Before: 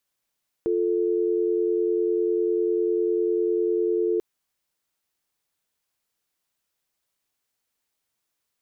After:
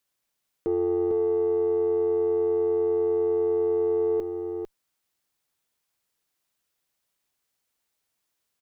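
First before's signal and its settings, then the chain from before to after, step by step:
call progress tone dial tone, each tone −23 dBFS 3.54 s
one-sided soft clipper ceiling −18 dBFS
on a send: single-tap delay 450 ms −7 dB

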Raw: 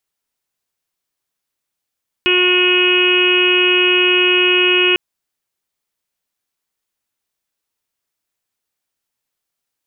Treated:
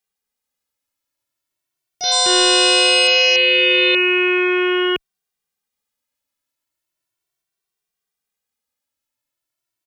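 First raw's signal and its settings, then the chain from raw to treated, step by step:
steady harmonic partials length 2.70 s, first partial 362 Hz, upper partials −20/−12/−9.5/−12/−11/1/0/−15 dB, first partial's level −15.5 dB
transient designer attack −6 dB, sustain −2 dB
delay with pitch and tempo change per echo 439 ms, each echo +6 semitones, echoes 3
barber-pole flanger 2.1 ms +0.37 Hz

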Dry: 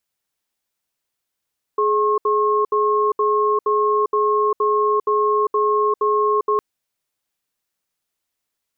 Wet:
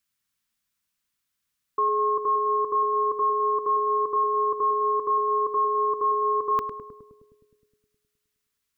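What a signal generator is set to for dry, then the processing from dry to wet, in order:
tone pair in a cadence 421 Hz, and 1,080 Hz, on 0.40 s, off 0.07 s, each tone −17.5 dBFS 4.81 s
flat-topped bell 540 Hz −10 dB
on a send: feedback echo with a low-pass in the loop 104 ms, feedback 76%, low-pass 840 Hz, level −5.5 dB

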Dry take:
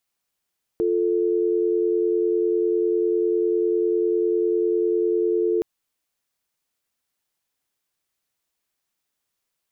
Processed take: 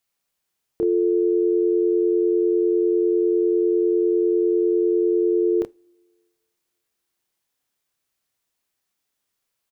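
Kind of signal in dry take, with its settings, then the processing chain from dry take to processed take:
call progress tone dial tone, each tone −21 dBFS 4.82 s
double-tracking delay 29 ms −5 dB
coupled-rooms reverb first 0.28 s, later 1.9 s, from −22 dB, DRR 19.5 dB

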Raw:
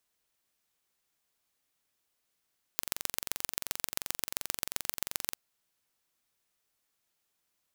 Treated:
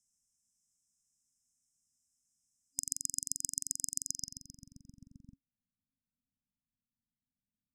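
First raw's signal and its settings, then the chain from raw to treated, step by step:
impulse train 22.8 per second, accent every 3, −2 dBFS 2.56 s
brick-wall band-stop 270–5,000 Hz
low-pass filter sweep 7,700 Hz → 350 Hz, 0:04.04–0:05.56

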